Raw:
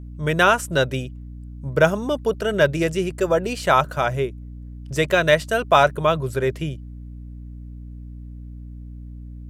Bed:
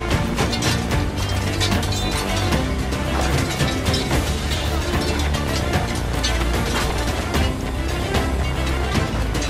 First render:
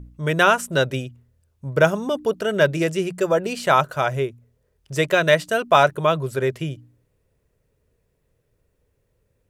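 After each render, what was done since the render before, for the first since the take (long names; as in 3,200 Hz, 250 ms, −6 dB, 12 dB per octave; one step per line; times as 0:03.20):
hum removal 60 Hz, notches 5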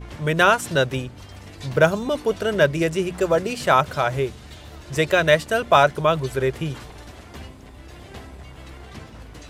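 mix in bed −19 dB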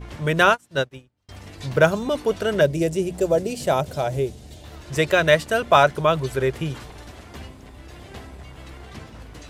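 0:00.49–0:01.29: expander for the loud parts 2.5 to 1, over −37 dBFS
0:02.61–0:04.64: drawn EQ curve 680 Hz 0 dB, 1,200 Hz −13 dB, 7,800 Hz +1 dB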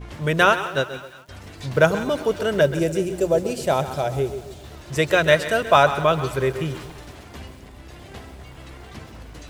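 echo with a time of its own for lows and highs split 800 Hz, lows 129 ms, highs 178 ms, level −15.5 dB
feedback echo at a low word length 132 ms, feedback 35%, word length 7 bits, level −12.5 dB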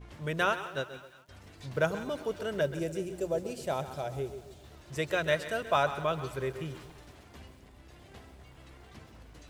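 level −12 dB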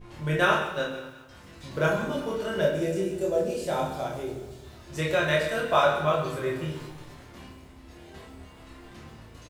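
double-tracking delay 26 ms −3 dB
rectangular room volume 100 cubic metres, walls mixed, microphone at 0.93 metres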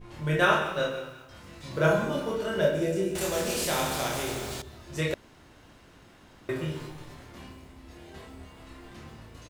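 0:00.62–0:02.31: double-tracking delay 32 ms −6 dB
0:03.15–0:04.62: every bin compressed towards the loudest bin 2 to 1
0:05.14–0:06.49: fill with room tone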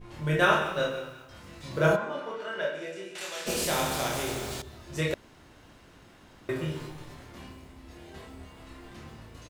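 0:01.95–0:03.46: resonant band-pass 1,000 Hz → 3,100 Hz, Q 0.76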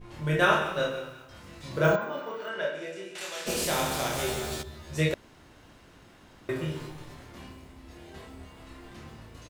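0:01.84–0:02.49: bad sample-rate conversion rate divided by 2×, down filtered, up hold
0:04.17–0:05.09: double-tracking delay 13 ms −3 dB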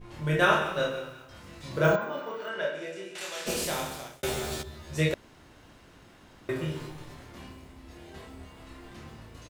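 0:03.49–0:04.23: fade out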